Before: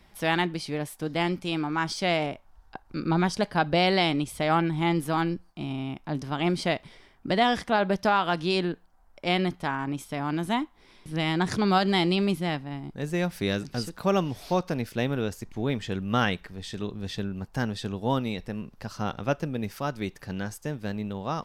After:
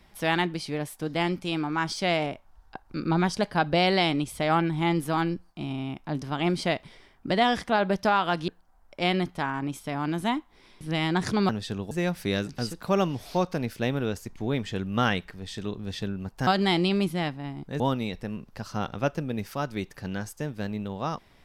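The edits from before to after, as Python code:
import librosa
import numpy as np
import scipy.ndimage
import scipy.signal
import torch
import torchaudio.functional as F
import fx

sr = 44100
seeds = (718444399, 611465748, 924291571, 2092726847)

y = fx.edit(x, sr, fx.cut(start_s=8.48, length_s=0.25),
    fx.swap(start_s=11.74, length_s=1.33, other_s=17.63, other_length_s=0.42), tone=tone)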